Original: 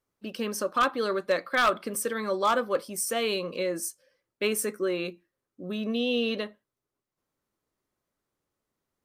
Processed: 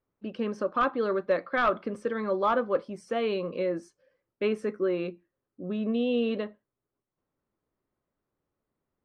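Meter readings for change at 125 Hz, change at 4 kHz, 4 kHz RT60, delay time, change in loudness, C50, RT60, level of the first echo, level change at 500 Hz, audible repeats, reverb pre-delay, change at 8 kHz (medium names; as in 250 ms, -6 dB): +2.0 dB, -9.5 dB, no reverb, no echo, -1.0 dB, no reverb, no reverb, no echo, +0.5 dB, no echo, no reverb, under -25 dB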